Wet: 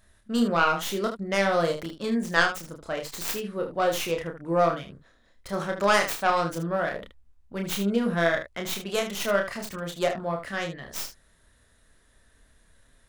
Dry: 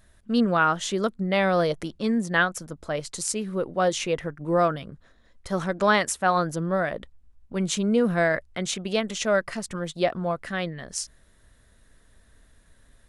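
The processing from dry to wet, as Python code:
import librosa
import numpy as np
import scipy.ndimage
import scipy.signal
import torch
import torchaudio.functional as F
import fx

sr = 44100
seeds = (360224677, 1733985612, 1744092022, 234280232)

y = fx.tracing_dist(x, sr, depth_ms=0.3)
y = fx.low_shelf(y, sr, hz=400.0, db=-4.0)
y = fx.room_early_taps(y, sr, ms=(30, 76), db=(-4.0, -9.5))
y = y * 10.0 ** (-2.0 / 20.0)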